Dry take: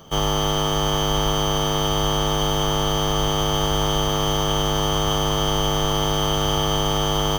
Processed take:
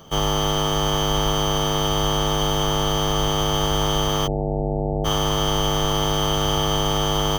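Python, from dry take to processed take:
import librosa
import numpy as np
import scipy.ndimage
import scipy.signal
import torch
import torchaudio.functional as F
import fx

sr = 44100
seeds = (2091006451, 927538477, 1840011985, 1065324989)

y = fx.steep_lowpass(x, sr, hz=810.0, slope=72, at=(4.26, 5.04), fade=0.02)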